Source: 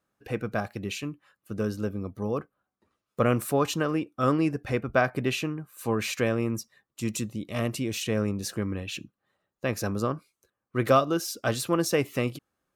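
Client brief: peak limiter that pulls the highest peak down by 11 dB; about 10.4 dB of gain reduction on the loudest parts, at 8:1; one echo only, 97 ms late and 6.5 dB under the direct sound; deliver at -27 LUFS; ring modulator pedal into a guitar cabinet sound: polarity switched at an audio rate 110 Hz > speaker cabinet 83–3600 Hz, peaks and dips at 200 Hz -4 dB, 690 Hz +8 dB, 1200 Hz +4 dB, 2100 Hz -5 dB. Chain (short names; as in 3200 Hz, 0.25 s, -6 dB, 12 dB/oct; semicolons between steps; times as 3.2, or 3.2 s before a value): compressor 8:1, threshold -26 dBFS; limiter -25.5 dBFS; echo 97 ms -6.5 dB; polarity switched at an audio rate 110 Hz; speaker cabinet 83–3600 Hz, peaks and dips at 200 Hz -4 dB, 690 Hz +8 dB, 1200 Hz +4 dB, 2100 Hz -5 dB; gain +8.5 dB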